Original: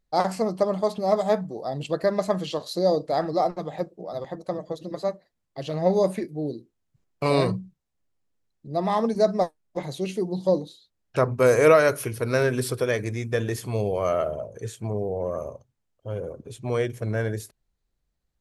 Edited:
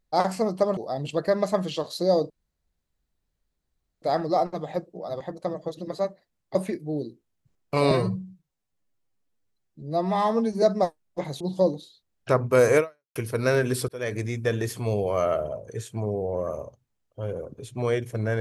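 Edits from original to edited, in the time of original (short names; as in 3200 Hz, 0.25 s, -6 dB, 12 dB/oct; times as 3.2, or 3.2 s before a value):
0.77–1.53 cut
3.06 insert room tone 1.72 s
5.59–6.04 cut
7.4–9.21 stretch 1.5×
9.99–10.28 cut
11.65–12.03 fade out exponential
12.76–13.05 fade in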